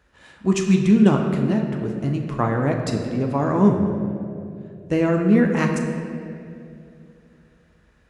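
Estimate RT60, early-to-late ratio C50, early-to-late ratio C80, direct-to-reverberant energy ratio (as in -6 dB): 2.7 s, 4.5 dB, 5.5 dB, 1.5 dB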